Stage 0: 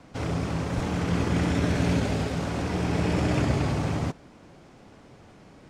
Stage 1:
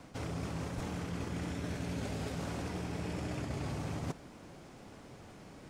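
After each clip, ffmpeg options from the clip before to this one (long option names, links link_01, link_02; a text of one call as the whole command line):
ffmpeg -i in.wav -af "highshelf=frequency=9400:gain=11.5,areverse,acompressor=threshold=-33dB:ratio=12,areverse,volume=-1.5dB" out.wav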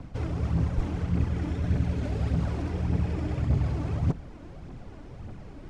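ffmpeg -i in.wav -af "aphaser=in_gain=1:out_gain=1:delay=3.5:decay=0.45:speed=1.7:type=triangular,aemphasis=mode=reproduction:type=bsi,volume=1.5dB" out.wav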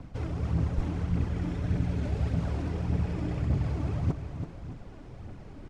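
ffmpeg -i in.wav -af "aecho=1:1:331|617:0.355|0.178,volume=-2.5dB" out.wav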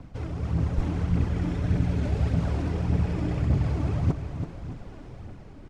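ffmpeg -i in.wav -af "dynaudnorm=framelen=140:gausssize=9:maxgain=4dB" out.wav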